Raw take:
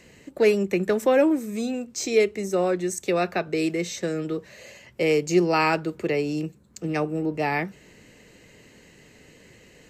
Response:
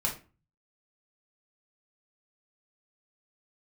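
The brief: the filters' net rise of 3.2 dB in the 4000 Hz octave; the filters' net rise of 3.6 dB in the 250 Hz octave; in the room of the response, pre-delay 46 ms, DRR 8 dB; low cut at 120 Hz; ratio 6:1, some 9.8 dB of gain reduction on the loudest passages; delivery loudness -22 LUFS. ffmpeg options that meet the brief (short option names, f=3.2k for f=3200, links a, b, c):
-filter_complex "[0:a]highpass=120,equalizer=f=250:t=o:g=5.5,equalizer=f=4k:t=o:g=4,acompressor=threshold=-23dB:ratio=6,asplit=2[a][b];[1:a]atrim=start_sample=2205,adelay=46[c];[b][c]afir=irnorm=-1:irlink=0,volume=-14dB[d];[a][d]amix=inputs=2:normalize=0,volume=5.5dB"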